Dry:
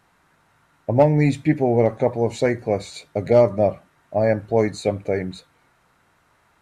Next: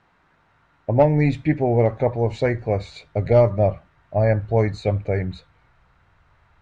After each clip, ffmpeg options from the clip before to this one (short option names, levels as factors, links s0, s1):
-af "lowpass=3800,asubboost=boost=7:cutoff=95"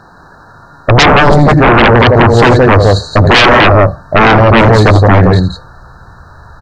-af "aecho=1:1:81.63|169.1:0.282|0.501,afftfilt=real='re*(1-between(b*sr/4096,1800,3800))':imag='im*(1-between(b*sr/4096,1800,3800))':win_size=4096:overlap=0.75,aeval=exprs='0.596*sin(PI/2*6.31*val(0)/0.596)':c=same,volume=1.41"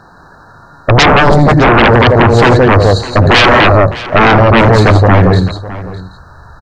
-af "aecho=1:1:608:0.15,volume=0.891"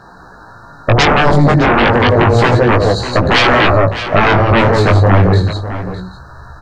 -af "acompressor=threshold=0.355:ratio=6,flanger=delay=15.5:depth=5.8:speed=0.31,volume=1.58"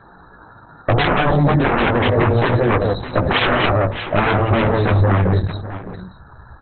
-af "volume=0.596" -ar 48000 -c:a libopus -b:a 8k